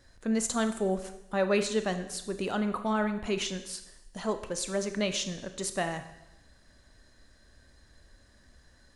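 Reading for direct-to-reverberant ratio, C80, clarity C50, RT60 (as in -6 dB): 8.5 dB, 13.0 dB, 11.0 dB, 0.95 s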